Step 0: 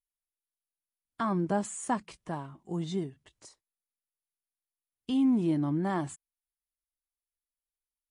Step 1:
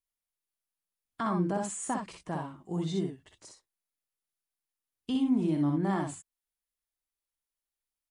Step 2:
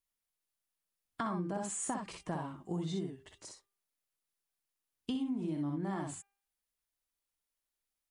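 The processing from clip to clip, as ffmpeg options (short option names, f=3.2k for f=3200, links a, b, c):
-filter_complex "[0:a]alimiter=limit=-23.5dB:level=0:latency=1:release=93,asplit=2[a][b];[b]aecho=0:1:51|62:0.316|0.596[c];[a][c]amix=inputs=2:normalize=0"
-af "bandreject=f=398.7:t=h:w=4,bandreject=f=797.4:t=h:w=4,bandreject=f=1.1961k:t=h:w=4,bandreject=f=1.5948k:t=h:w=4,bandreject=f=1.9935k:t=h:w=4,bandreject=f=2.3922k:t=h:w=4,bandreject=f=2.7909k:t=h:w=4,bandreject=f=3.1896k:t=h:w=4,bandreject=f=3.5883k:t=h:w=4,acompressor=threshold=-35dB:ratio=6,volume=1.5dB"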